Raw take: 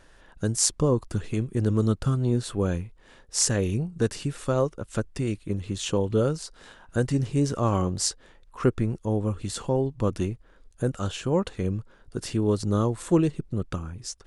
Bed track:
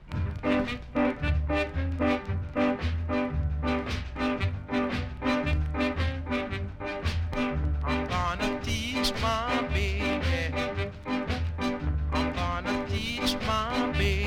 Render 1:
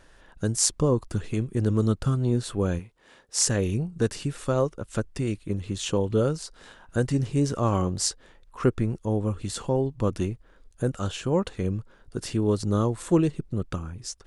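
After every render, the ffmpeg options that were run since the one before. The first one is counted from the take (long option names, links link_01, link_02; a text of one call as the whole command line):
ffmpeg -i in.wav -filter_complex "[0:a]asettb=1/sr,asplit=3[link_01][link_02][link_03];[link_01]atrim=end=2.794[link_04];[link_02]atrim=start=2.79:end=3.47,asetpts=PTS-STARTPTS,afade=type=in:duration=0.004:curve=qsin,afade=type=out:start_time=0.676:duration=0.004:curve=qsin,highpass=frequency=230:poles=1[link_05];[link_03]atrim=start=3.466[link_06];[link_04][link_05]acrossfade=duration=0.004:curve1=hsin:curve2=qsin[link_07];[link_07][link_06]acrossfade=duration=0.004:curve1=qsin:curve2=hsin" out.wav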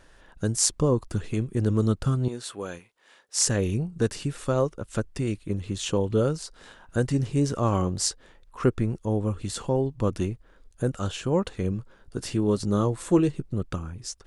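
ffmpeg -i in.wav -filter_complex "[0:a]asettb=1/sr,asplit=3[link_01][link_02][link_03];[link_01]atrim=end=2.284[link_04];[link_02]atrim=start=2.28:end=3.4,asetpts=PTS-STARTPTS,afade=type=in:duration=0.004:curve=qsin,afade=type=out:start_time=1.116:duration=0.004:curve=qsin,highpass=frequency=890:poles=1[link_05];[link_03]atrim=start=3.396[link_06];[link_04][link_05]acrossfade=duration=0.004:curve1=hsin:curve2=qsin[link_07];[link_07][link_06]acrossfade=duration=0.004:curve1=qsin:curve2=hsin,asettb=1/sr,asplit=3[link_08][link_09][link_10];[link_08]atrim=end=11.704[link_11];[link_09]atrim=start=11.7:end=13.55,asetpts=PTS-STARTPTS,afade=type=in:duration=0.004:curve=qsin,afade=type=out:start_time=1.846:duration=0.004:curve=qsin,asplit=2[link_12][link_13];[link_13]adelay=15,volume=-10.5dB[link_14];[link_12][link_14]amix=inputs=2:normalize=0,atrim=end_sample=81585[link_15];[link_10]atrim=start=13.546[link_16];[link_11][link_15]acrossfade=duration=0.004:curve1=hsin:curve2=qsin[link_17];[link_17][link_16]acrossfade=duration=0.004:curve1=qsin:curve2=hsin" out.wav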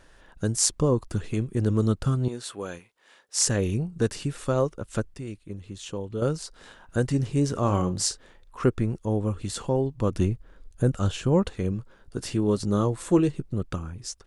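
ffmpeg -i in.wav -filter_complex "[0:a]asplit=3[link_01][link_02][link_03];[link_01]afade=type=out:start_time=7.54:duration=0.02[link_04];[link_02]asplit=2[link_05][link_06];[link_06]adelay=39,volume=-11.5dB[link_07];[link_05][link_07]amix=inputs=2:normalize=0,afade=type=in:start_time=7.54:duration=0.02,afade=type=out:start_time=8.62:duration=0.02[link_08];[link_03]afade=type=in:start_time=8.62:duration=0.02[link_09];[link_04][link_08][link_09]amix=inputs=3:normalize=0,asettb=1/sr,asplit=3[link_10][link_11][link_12];[link_10]atrim=end=10.154[link_13];[link_11]atrim=start=10.15:end=11.5,asetpts=PTS-STARTPTS,afade=type=in:duration=0.004:curve=qsin,afade=type=out:start_time=1.346:duration=0.004:curve=qsin,lowshelf=frequency=220:gain=7[link_14];[link_12]atrim=start=11.496[link_15];[link_13][link_14]acrossfade=duration=0.004:curve1=hsin:curve2=qsin[link_16];[link_16][link_15]acrossfade=duration=0.004:curve1=qsin:curve2=hsin,asplit=3[link_17][link_18][link_19];[link_17]atrim=end=5.142[link_20];[link_18]atrim=start=5.138:end=6.222,asetpts=PTS-STARTPTS,volume=-8.5dB[link_21];[link_19]atrim=start=6.218[link_22];[link_20][link_21]acrossfade=duration=0.004:curve1=hsin:curve2=hsin[link_23];[link_23][link_22]acrossfade=duration=0.004:curve1=hsin:curve2=hsin" out.wav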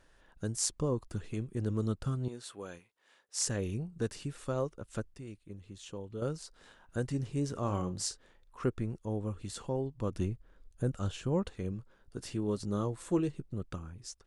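ffmpeg -i in.wav -af "volume=-9.5dB" out.wav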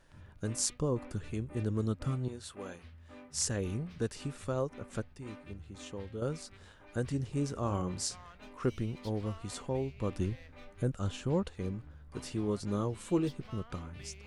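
ffmpeg -i in.wav -i bed.wav -filter_complex "[1:a]volume=-24dB[link_01];[0:a][link_01]amix=inputs=2:normalize=0" out.wav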